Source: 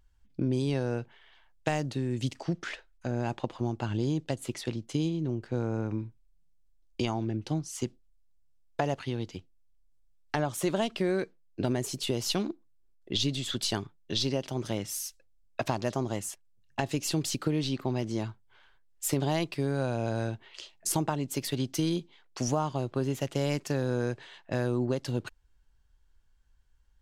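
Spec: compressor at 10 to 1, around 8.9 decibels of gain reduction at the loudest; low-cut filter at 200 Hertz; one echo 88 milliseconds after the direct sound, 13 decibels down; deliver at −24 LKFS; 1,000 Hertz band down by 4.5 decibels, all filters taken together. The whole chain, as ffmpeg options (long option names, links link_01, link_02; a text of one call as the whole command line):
ffmpeg -i in.wav -af "highpass=200,equalizer=frequency=1000:width_type=o:gain=-6.5,acompressor=threshold=-35dB:ratio=10,aecho=1:1:88:0.224,volume=17dB" out.wav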